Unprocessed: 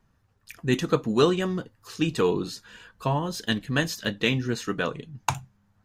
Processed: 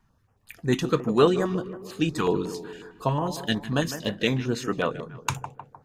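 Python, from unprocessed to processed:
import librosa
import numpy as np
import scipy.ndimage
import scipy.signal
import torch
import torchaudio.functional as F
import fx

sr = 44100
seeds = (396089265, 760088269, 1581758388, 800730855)

p1 = fx.peak_eq(x, sr, hz=780.0, db=4.5, octaves=1.5)
p2 = p1 + fx.echo_tape(p1, sr, ms=153, feedback_pct=62, wet_db=-11.0, lp_hz=1500.0, drive_db=4.0, wow_cents=29, dry=0)
y = fx.filter_held_notch(p2, sr, hz=11.0, low_hz=530.0, high_hz=5600.0)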